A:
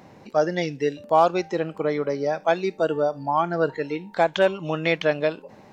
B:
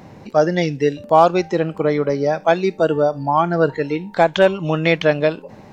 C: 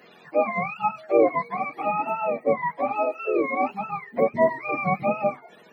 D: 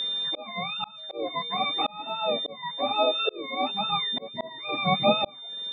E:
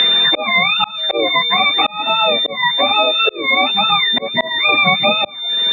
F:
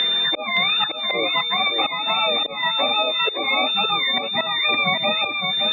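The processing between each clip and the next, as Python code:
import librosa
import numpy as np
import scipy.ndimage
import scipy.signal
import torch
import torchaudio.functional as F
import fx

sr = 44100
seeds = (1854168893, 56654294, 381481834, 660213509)

y1 = fx.low_shelf(x, sr, hz=160.0, db=9.0)
y1 = y1 * 10.0 ** (5.0 / 20.0)
y2 = fx.octave_mirror(y1, sr, pivot_hz=610.0)
y2 = scipy.signal.sosfilt(scipy.signal.butter(4, 190.0, 'highpass', fs=sr, output='sos'), y2)
y2 = y2 * 10.0 ** (-5.5 / 20.0)
y3 = y2 + 10.0 ** (-29.0 / 20.0) * np.sin(2.0 * np.pi * 3600.0 * np.arange(len(y2)) / sr)
y3 = fx.auto_swell(y3, sr, attack_ms=688.0)
y3 = y3 * 10.0 ** (2.5 / 20.0)
y4 = fx.peak_eq(y3, sr, hz=2100.0, db=11.5, octaves=1.3)
y4 = fx.band_squash(y4, sr, depth_pct=100)
y4 = y4 * 10.0 ** (8.0 / 20.0)
y5 = y4 + 10.0 ** (-5.5 / 20.0) * np.pad(y4, (int(567 * sr / 1000.0), 0))[:len(y4)]
y5 = y5 * 10.0 ** (-7.5 / 20.0)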